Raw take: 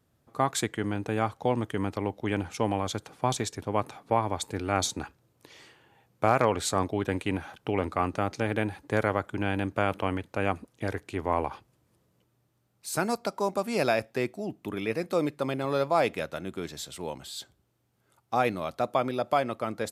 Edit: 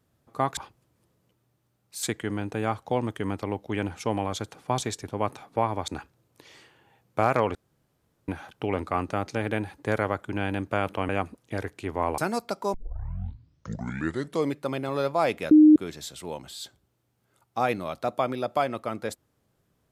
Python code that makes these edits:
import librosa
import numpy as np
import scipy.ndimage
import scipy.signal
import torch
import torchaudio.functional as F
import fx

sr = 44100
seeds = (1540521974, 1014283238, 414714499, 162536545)

y = fx.edit(x, sr, fx.cut(start_s=4.42, length_s=0.51),
    fx.room_tone_fill(start_s=6.6, length_s=0.73),
    fx.cut(start_s=10.14, length_s=0.25),
    fx.move(start_s=11.48, length_s=1.46, to_s=0.57),
    fx.tape_start(start_s=13.5, length_s=1.84),
    fx.bleep(start_s=16.27, length_s=0.25, hz=306.0, db=-10.0), tone=tone)